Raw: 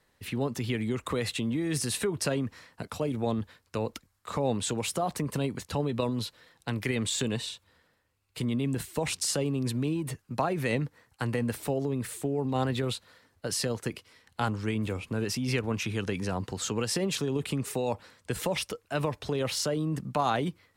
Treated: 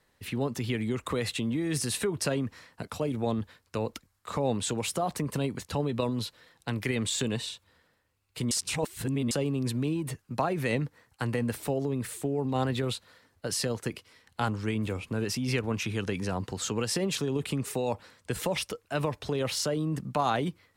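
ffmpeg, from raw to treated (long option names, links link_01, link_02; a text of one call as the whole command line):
ffmpeg -i in.wav -filter_complex "[0:a]asplit=3[link_01][link_02][link_03];[link_01]atrim=end=8.512[link_04];[link_02]atrim=start=8.508:end=9.312,asetpts=PTS-STARTPTS,areverse[link_05];[link_03]atrim=start=9.308[link_06];[link_04][link_05]acrossfade=duration=0.004:curve1=hsin:curve2=hsin[link_07];[link_07][link_06]acrossfade=duration=0.004:curve1=hsin:curve2=hsin" out.wav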